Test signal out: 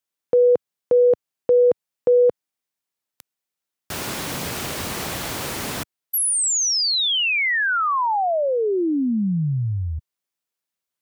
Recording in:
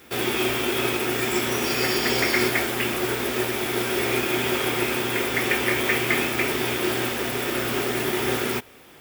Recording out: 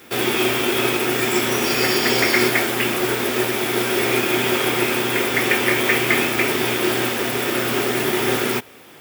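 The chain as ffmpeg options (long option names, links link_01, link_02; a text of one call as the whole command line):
ffmpeg -i in.wav -af "highpass=100,volume=4.5dB" out.wav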